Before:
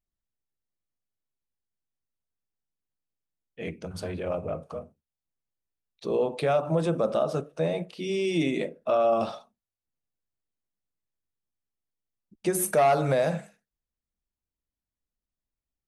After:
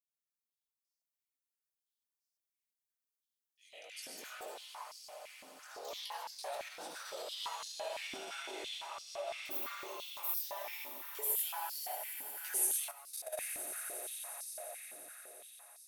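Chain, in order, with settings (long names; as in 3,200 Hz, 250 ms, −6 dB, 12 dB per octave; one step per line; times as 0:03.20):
comb and all-pass reverb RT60 0.74 s, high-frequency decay 0.9×, pre-delay 65 ms, DRR −0.5 dB
downward compressor, threshold −18 dBFS, peak gain reduction 6 dB
delay with pitch and tempo change per echo 684 ms, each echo +3 semitones, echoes 3
chorus effect 1.3 Hz, delay 19 ms, depth 2.3 ms
echo that builds up and dies away 88 ms, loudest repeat 8, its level −15.5 dB
brickwall limiter −18 dBFS, peak gain reduction 7 dB
0:12.91–0:13.38: output level in coarse steps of 13 dB
first difference
high-pass on a step sequencer 5.9 Hz 270–5,000 Hz
level −2 dB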